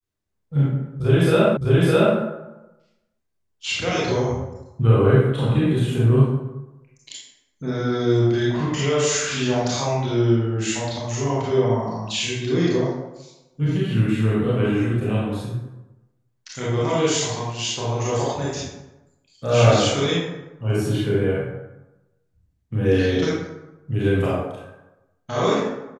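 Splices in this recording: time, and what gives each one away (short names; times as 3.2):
1.57 repeat of the last 0.61 s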